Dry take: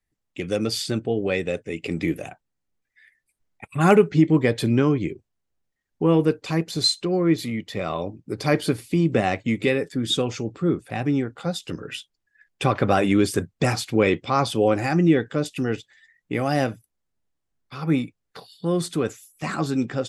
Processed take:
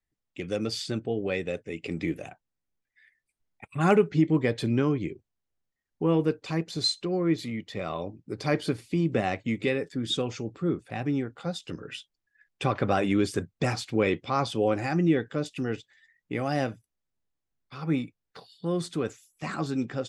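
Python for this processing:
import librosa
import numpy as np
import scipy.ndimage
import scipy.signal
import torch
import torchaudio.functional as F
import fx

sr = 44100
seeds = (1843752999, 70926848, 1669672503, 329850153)

y = scipy.signal.sosfilt(scipy.signal.butter(2, 8000.0, 'lowpass', fs=sr, output='sos'), x)
y = y * librosa.db_to_amplitude(-5.5)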